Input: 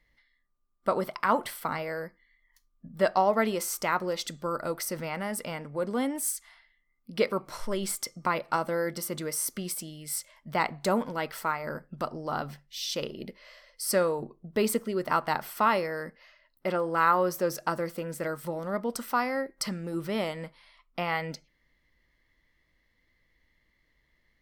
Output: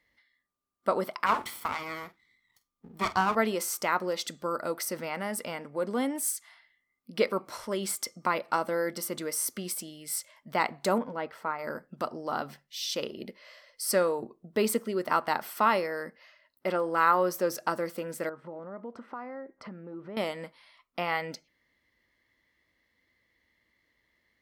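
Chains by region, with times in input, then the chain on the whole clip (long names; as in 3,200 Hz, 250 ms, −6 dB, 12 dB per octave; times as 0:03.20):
0:01.26–0:03.35: lower of the sound and its delayed copy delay 0.91 ms + double-tracking delay 47 ms −14 dB
0:10.98–0:11.59: low-pass filter 1,100 Hz 6 dB per octave + notch filter 350 Hz, Q 8
0:18.29–0:20.17: low-pass filter 1,400 Hz + downward compressor 3 to 1, threshold −39 dBFS
whole clip: high-pass filter 98 Hz 12 dB per octave; parametric band 150 Hz −8.5 dB 0.39 octaves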